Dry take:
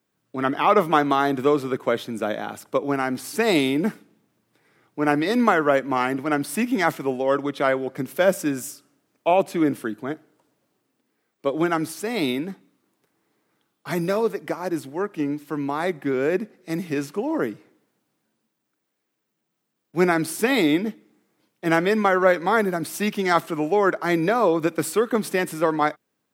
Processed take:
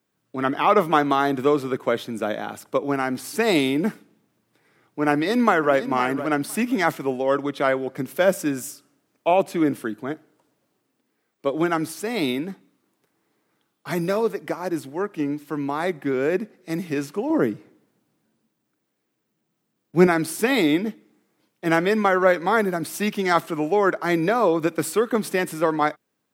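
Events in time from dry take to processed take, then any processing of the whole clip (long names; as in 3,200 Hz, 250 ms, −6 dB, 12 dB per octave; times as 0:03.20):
0:05.12–0:05.75: delay throw 510 ms, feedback 15%, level −12.5 dB
0:17.30–0:20.07: low-shelf EQ 410 Hz +7.5 dB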